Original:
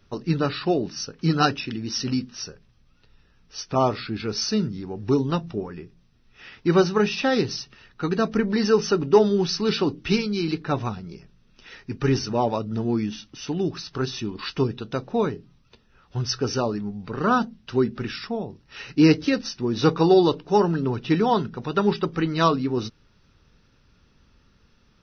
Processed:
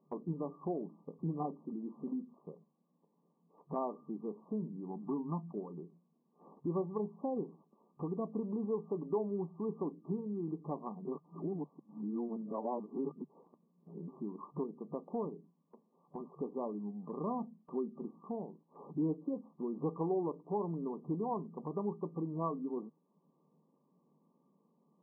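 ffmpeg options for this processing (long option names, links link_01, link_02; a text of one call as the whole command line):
ffmpeg -i in.wav -filter_complex "[0:a]asettb=1/sr,asplit=3[link_01][link_02][link_03];[link_01]atrim=end=4.904[link_04];[link_02]atrim=start=4.9:end=5.52,asetpts=PTS-STARTPTS,afade=type=in:duration=0.004:curve=qsin,afade=type=out:start_time=0.616:duration=0.004:curve=qsin,aecho=1:1:1:0.65,atrim=end_sample=27342[link_05];[link_03]atrim=start=5.516[link_06];[link_04][link_05]acrossfade=duration=0.004:curve1=hsin:curve2=qsin[link_07];[link_07][link_06]acrossfade=duration=0.004:curve1=qsin:curve2=hsin,asplit=3[link_08][link_09][link_10];[link_08]atrim=end=11.052[link_11];[link_09]atrim=start=11.048:end=14.082,asetpts=PTS-STARTPTS,areverse[link_12];[link_10]atrim=start=14.078[link_13];[link_11][link_12]acrossfade=duration=0.004:curve1=hsin:curve2=hsin[link_14];[link_14][link_13]acrossfade=duration=0.004:curve1=hsin:curve2=hsin,afftfilt=real='re*between(b*sr/4096,140,1200)':imag='im*between(b*sr/4096,140,1200)':win_size=4096:overlap=0.75,acompressor=threshold=-45dB:ratio=2,agate=range=-6dB:threshold=-58dB:ratio=16:detection=peak,volume=-1dB" out.wav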